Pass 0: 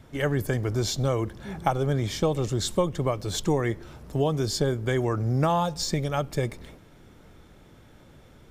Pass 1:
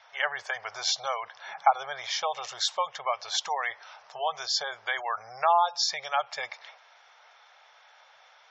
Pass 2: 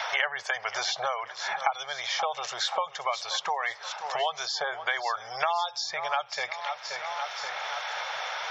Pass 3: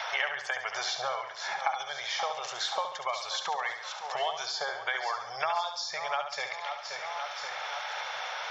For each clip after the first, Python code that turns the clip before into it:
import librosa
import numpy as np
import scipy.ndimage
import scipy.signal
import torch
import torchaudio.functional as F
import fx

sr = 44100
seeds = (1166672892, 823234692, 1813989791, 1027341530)

y1 = scipy.signal.sosfilt(scipy.signal.ellip(3, 1.0, 40, [740.0, 5900.0], 'bandpass', fs=sr, output='sos'), x)
y1 = fx.spec_gate(y1, sr, threshold_db=-25, keep='strong')
y1 = F.gain(torch.from_numpy(y1), 5.0).numpy()
y2 = fx.echo_feedback(y1, sr, ms=528, feedback_pct=41, wet_db=-18.0)
y2 = fx.band_squash(y2, sr, depth_pct=100)
y3 = fx.echo_feedback(y2, sr, ms=70, feedback_pct=47, wet_db=-7.5)
y3 = F.gain(torch.from_numpy(y3), -3.5).numpy()